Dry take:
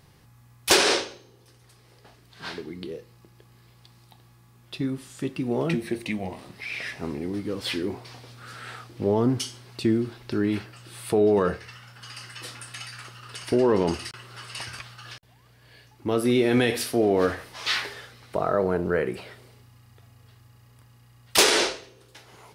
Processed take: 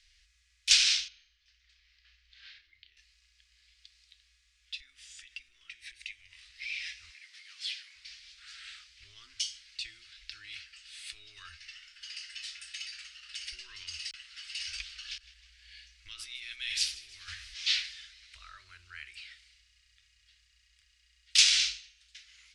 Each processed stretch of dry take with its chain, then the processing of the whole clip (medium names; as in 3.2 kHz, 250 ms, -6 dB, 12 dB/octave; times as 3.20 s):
1.08–2.97 s: compression 3:1, threshold -43 dBFS + distance through air 160 m + doubling 32 ms -8 dB
4.80–6.43 s: compression, threshold -32 dBFS + band-stop 4.2 kHz, Q 14
7.09–7.96 s: steep high-pass 590 Hz + compression 2:1, threshold -34 dBFS
14.65–17.54 s: bass shelf 110 Hz +7.5 dB + compressor with a negative ratio -25 dBFS + feedback delay 158 ms, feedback 55%, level -19 dB
whole clip: low-pass 7.2 kHz 24 dB/octave; dynamic bell 1.8 kHz, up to -7 dB, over -45 dBFS, Q 2; inverse Chebyshev band-stop 120–880 Hz, stop band 50 dB